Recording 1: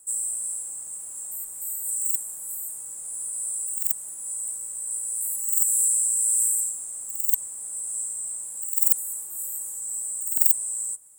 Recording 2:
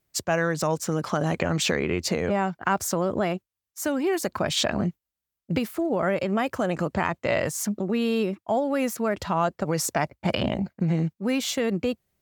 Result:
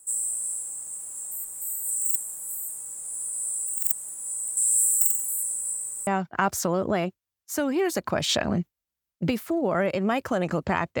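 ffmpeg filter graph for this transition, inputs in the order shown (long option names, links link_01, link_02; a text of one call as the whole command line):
ffmpeg -i cue0.wav -i cue1.wav -filter_complex "[0:a]apad=whole_dur=11,atrim=end=11,asplit=2[link_01][link_02];[link_01]atrim=end=4.572[link_03];[link_02]atrim=start=4.568:end=6.072,asetpts=PTS-STARTPTS,areverse[link_04];[1:a]atrim=start=2.348:end=7.28[link_05];[link_03][link_04]acrossfade=duration=0.004:curve1=hsin:curve2=hsin[link_06];[link_06][link_05]acrossfade=duration=0.004:curve1=hsin:curve2=hsin" out.wav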